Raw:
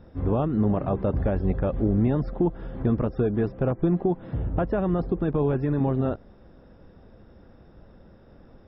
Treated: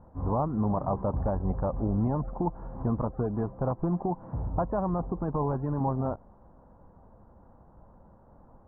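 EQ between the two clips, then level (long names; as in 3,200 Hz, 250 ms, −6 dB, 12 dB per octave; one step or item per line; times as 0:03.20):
transistor ladder low-pass 1,100 Hz, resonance 60%
parametric band 380 Hz −6 dB 0.92 octaves
+6.5 dB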